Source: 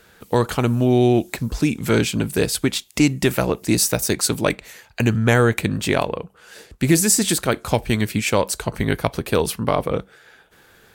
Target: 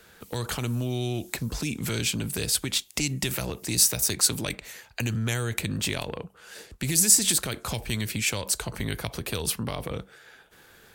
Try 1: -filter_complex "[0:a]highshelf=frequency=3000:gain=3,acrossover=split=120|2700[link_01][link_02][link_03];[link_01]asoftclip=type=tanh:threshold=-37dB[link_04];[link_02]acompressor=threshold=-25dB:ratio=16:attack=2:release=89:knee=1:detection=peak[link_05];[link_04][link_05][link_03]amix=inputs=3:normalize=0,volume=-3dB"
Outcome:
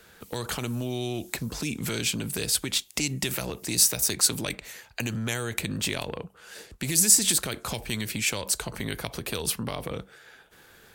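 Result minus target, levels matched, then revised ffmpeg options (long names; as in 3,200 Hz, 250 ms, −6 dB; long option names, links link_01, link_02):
soft clipping: distortion +9 dB
-filter_complex "[0:a]highshelf=frequency=3000:gain=3,acrossover=split=120|2700[link_01][link_02][link_03];[link_01]asoftclip=type=tanh:threshold=-26dB[link_04];[link_02]acompressor=threshold=-25dB:ratio=16:attack=2:release=89:knee=1:detection=peak[link_05];[link_04][link_05][link_03]amix=inputs=3:normalize=0,volume=-3dB"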